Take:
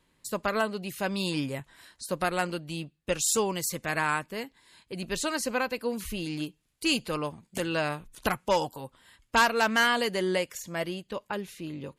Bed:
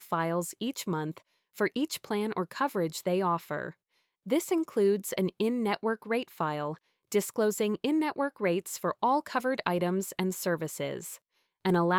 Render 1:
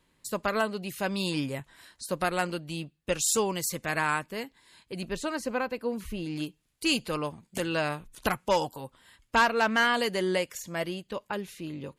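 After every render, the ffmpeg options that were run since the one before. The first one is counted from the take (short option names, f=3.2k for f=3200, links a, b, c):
-filter_complex "[0:a]asettb=1/sr,asplit=3[a][b][c];[a]atrim=end=5.084[d];[b]atrim=start=5.08:end=6.36,asetpts=PTS-STARTPTS,afade=t=in:d=0.004:c=qsin,afade=t=out:st=1.276:d=0.004:c=qsin,highshelf=f=2.3k:g=-9.5[e];[c]atrim=start=6.356[f];[d][e]acrossfade=d=0.004:c1=hsin:c2=qsin[g];[g][f]acrossfade=d=0.004:c1=qsin:c2=hsin,asettb=1/sr,asplit=3[h][i][j];[h]atrim=end=9.364[k];[i]atrim=start=9.36:end=9.94,asetpts=PTS-STARTPTS,afade=t=in:d=0.004:c=qsin,afade=t=out:st=0.576:d=0.004:c=qsin,aemphasis=mode=reproduction:type=cd[l];[j]atrim=start=9.936[m];[k][l]acrossfade=d=0.004:c1=hsin:c2=qsin[n];[n][m]acrossfade=d=0.004:c1=qsin:c2=hsin"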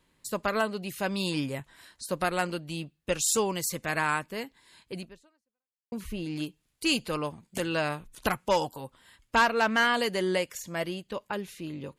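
-filter_complex "[0:a]asplit=2[a][b];[a]atrim=end=5.92,asetpts=PTS-STARTPTS,afade=t=out:st=4.97:d=0.95:c=exp[c];[b]atrim=start=5.92,asetpts=PTS-STARTPTS,afade=t=in:d=0.004:c=hsin[d];[c][d]concat=n=2:v=0:a=1"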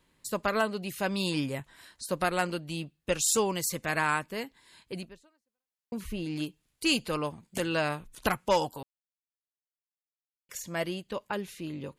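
-filter_complex "[0:a]asplit=3[a][b][c];[a]atrim=end=8.83,asetpts=PTS-STARTPTS,afade=t=out:st=8.826:d=0.004:c=hsin[d];[b]atrim=start=8.83:end=10.49,asetpts=PTS-STARTPTS,volume=0[e];[c]atrim=start=10.49,asetpts=PTS-STARTPTS,afade=t=in:d=0.004:c=hsin[f];[d][e][f]concat=n=3:v=0:a=1"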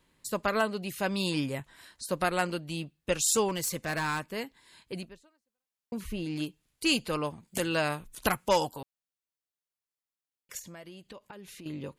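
-filter_complex "[0:a]asettb=1/sr,asplit=3[a][b][c];[a]atrim=end=3.484[d];[b]atrim=start=3.48:end=4.3,asetpts=PTS-STARTPTS,afade=t=in:d=0.004:c=qsin,afade=t=out:st=0.816:d=0.004:c=qsin,asoftclip=type=hard:threshold=-26dB[e];[c]atrim=start=4.296[f];[d][e]acrossfade=d=0.004:c1=hsin:c2=qsin[g];[g][f]acrossfade=d=0.004:c1=qsin:c2=hsin,asettb=1/sr,asplit=3[h][i][j];[h]atrim=end=7.474[k];[i]atrim=start=7.47:end=8.7,asetpts=PTS-STARTPTS,afade=t=in:d=0.004:c=qsin,afade=t=out:st=1.226:d=0.004:c=qsin,highshelf=f=7k:g=7[l];[j]atrim=start=8.696[m];[k][l]acrossfade=d=0.004:c1=hsin:c2=qsin[n];[n][m]acrossfade=d=0.004:c1=qsin:c2=hsin,asettb=1/sr,asplit=3[o][p][q];[o]atrim=end=10.594[r];[p]atrim=start=10.59:end=11.66,asetpts=PTS-STARTPTS,afade=t=in:d=0.004:c=qsin,afade=t=out:st=1.066:d=0.004:c=qsin,acompressor=threshold=-43dB:ratio=8:attack=3.2:release=140:knee=1:detection=peak[s];[q]atrim=start=11.656[t];[r][s]acrossfade=d=0.004:c1=hsin:c2=qsin[u];[u][t]acrossfade=d=0.004:c1=qsin:c2=hsin"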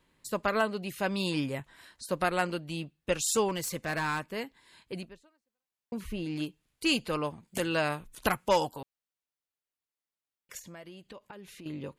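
-af "bass=f=250:g=-1,treble=f=4k:g=-4"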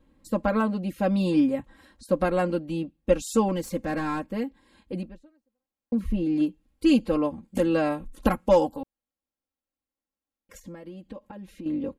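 -af "tiltshelf=f=880:g=9,aecho=1:1:3.7:0.88"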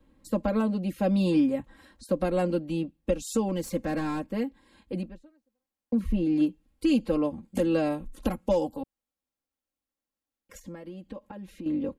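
-filter_complex "[0:a]acrossover=split=180|770|2300[a][b][c][d];[c]acompressor=threshold=-41dB:ratio=6[e];[a][b][e][d]amix=inputs=4:normalize=0,alimiter=limit=-15.5dB:level=0:latency=1:release=281"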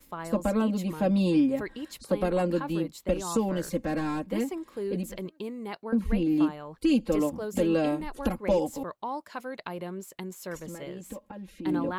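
-filter_complex "[1:a]volume=-8dB[a];[0:a][a]amix=inputs=2:normalize=0"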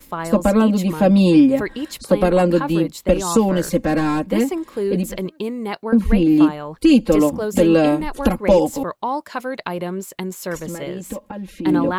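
-af "volume=11dB"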